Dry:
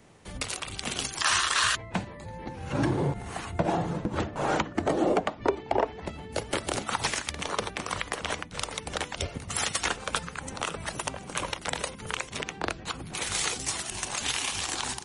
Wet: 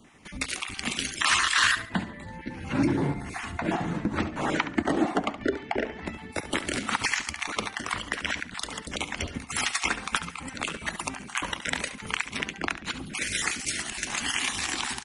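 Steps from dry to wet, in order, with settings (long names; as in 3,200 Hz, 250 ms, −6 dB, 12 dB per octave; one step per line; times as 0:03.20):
time-frequency cells dropped at random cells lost 21%
octave-band graphic EQ 125/250/500/2,000 Hz −4/+8/−6/+7 dB
repeating echo 70 ms, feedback 31%, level −12.5 dB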